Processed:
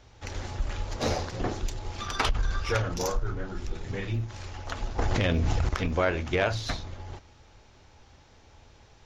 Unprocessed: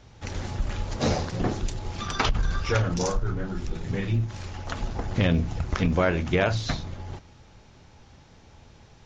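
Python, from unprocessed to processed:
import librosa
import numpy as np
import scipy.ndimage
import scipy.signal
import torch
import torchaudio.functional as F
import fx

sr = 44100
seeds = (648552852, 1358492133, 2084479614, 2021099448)

y = fx.tracing_dist(x, sr, depth_ms=0.032)
y = fx.peak_eq(y, sr, hz=170.0, db=-8.5, octaves=1.1)
y = fx.env_flatten(y, sr, amount_pct=100, at=(4.98, 5.69))
y = y * librosa.db_to_amplitude(-1.5)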